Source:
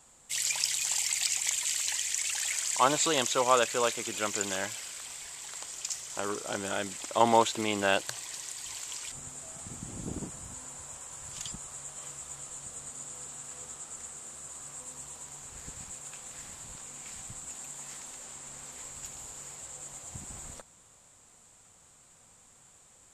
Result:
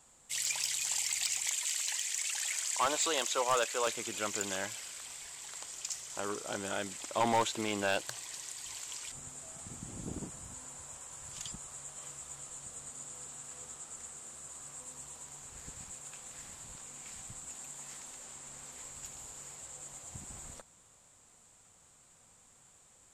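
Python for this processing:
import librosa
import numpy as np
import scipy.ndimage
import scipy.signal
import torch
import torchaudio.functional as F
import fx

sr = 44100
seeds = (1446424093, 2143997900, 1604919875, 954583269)

y = fx.highpass(x, sr, hz=390.0, slope=12, at=(1.46, 3.87))
y = np.clip(10.0 ** (19.0 / 20.0) * y, -1.0, 1.0) / 10.0 ** (19.0 / 20.0)
y = F.gain(torch.from_numpy(y), -3.5).numpy()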